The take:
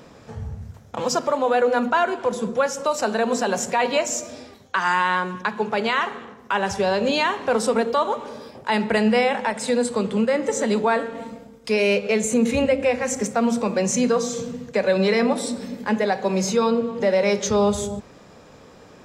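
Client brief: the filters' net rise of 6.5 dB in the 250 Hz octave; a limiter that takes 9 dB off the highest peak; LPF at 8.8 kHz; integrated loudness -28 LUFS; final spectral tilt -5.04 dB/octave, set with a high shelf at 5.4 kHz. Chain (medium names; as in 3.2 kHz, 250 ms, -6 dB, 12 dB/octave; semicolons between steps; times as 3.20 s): low-pass 8.8 kHz; peaking EQ 250 Hz +7.5 dB; treble shelf 5.4 kHz -7 dB; trim -5.5 dB; peak limiter -18.5 dBFS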